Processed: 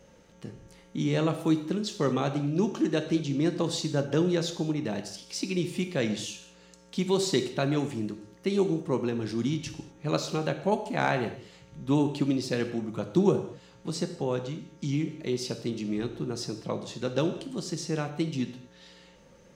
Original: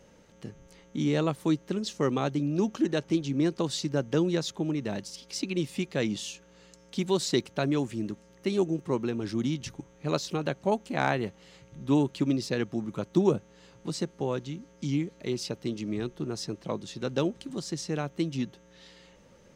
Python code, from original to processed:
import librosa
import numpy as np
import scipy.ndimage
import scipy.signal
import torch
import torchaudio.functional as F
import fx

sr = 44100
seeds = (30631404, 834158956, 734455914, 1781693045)

y = fx.rev_gated(x, sr, seeds[0], gate_ms=260, shape='falling', drr_db=6.5)